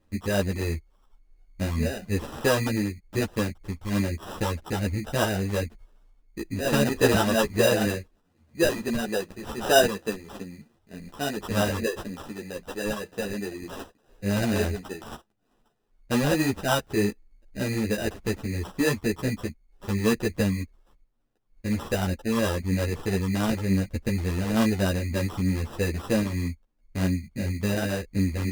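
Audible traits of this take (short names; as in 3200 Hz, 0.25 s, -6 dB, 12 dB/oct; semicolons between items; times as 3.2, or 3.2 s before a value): phasing stages 8, 3.3 Hz, lowest notch 720–2600 Hz; aliases and images of a low sample rate 2200 Hz, jitter 0%; a shimmering, thickened sound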